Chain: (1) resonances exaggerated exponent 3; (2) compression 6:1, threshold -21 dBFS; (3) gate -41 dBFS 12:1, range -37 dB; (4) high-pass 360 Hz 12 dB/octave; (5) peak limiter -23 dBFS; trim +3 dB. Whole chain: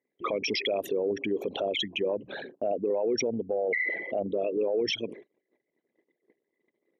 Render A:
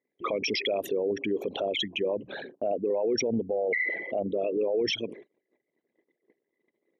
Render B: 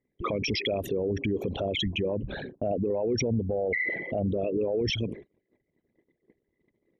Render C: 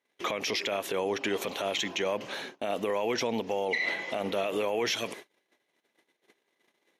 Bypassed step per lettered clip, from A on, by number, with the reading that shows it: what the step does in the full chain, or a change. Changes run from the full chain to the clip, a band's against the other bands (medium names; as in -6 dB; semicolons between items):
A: 2, mean gain reduction 2.0 dB; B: 4, 125 Hz band +15.0 dB; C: 1, 1 kHz band +4.0 dB